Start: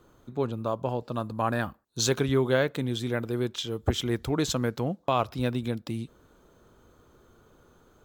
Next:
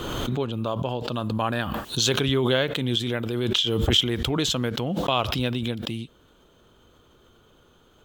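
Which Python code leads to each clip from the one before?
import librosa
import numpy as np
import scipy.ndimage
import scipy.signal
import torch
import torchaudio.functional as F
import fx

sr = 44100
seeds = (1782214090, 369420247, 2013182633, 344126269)

y = fx.peak_eq(x, sr, hz=3100.0, db=13.0, octaves=0.58)
y = fx.pre_swell(y, sr, db_per_s=23.0)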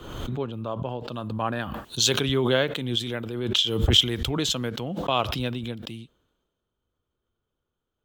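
y = fx.band_widen(x, sr, depth_pct=70)
y = F.gain(torch.from_numpy(y), -2.5).numpy()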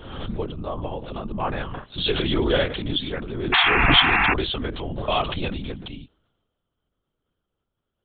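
y = fx.lpc_vocoder(x, sr, seeds[0], excitation='whisper', order=10)
y = fx.spec_paint(y, sr, seeds[1], shape='noise', start_s=3.52, length_s=0.82, low_hz=680.0, high_hz=2800.0, level_db=-21.0)
y = F.gain(torch.from_numpy(y), 1.5).numpy()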